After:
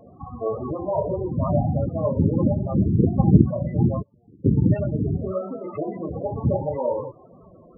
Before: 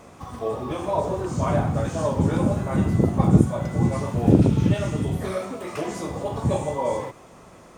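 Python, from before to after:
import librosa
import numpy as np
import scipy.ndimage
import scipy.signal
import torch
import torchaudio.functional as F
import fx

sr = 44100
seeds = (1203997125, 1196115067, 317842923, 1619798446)

y = fx.gate_flip(x, sr, shuts_db=-18.0, range_db=-37, at=(4.01, 4.44), fade=0.02)
y = fx.spec_topn(y, sr, count=16)
y = fx.notch(y, sr, hz=980.0, q=13.0)
y = y * librosa.db_to_amplitude(1.5)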